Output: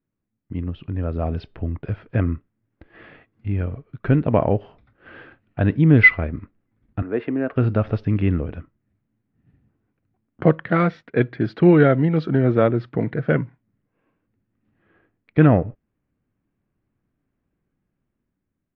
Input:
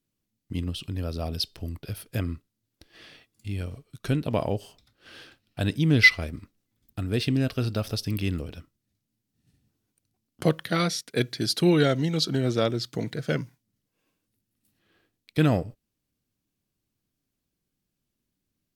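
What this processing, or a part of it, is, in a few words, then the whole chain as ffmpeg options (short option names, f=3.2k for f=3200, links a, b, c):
action camera in a waterproof case: -filter_complex "[0:a]asettb=1/sr,asplit=3[a][b][c];[a]atrim=end=7.024[d];[b]atrim=start=7.02:end=7.56,asetpts=PTS-STARTPTS,afade=t=in:d=0.004:c=qsin,afade=t=out:st=0.536:d=0.004:c=qsin,acrossover=split=270 2200:gain=0.0631 1 0.2[e][f][g];[e][f][g]amix=inputs=3:normalize=0[h];[c]atrim=start=7.556[i];[d][h]acrossfade=d=0.004:c1=hsin:c2=qsin[j];[j][i]acrossfade=d=0.004:c1=qsin:c2=hsin,lowpass=f=2k:w=0.5412,lowpass=f=2k:w=1.3066,dynaudnorm=f=400:g=5:m=7dB,volume=1.5dB" -ar 24000 -c:a aac -b:a 64k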